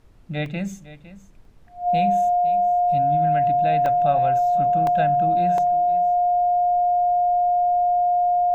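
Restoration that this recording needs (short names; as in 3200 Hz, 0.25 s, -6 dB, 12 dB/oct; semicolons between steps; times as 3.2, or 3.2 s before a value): notch 710 Hz, Q 30; interpolate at 0.46/1.45/3.86/4.87/5.58, 1.8 ms; expander -37 dBFS, range -21 dB; inverse comb 0.507 s -16.5 dB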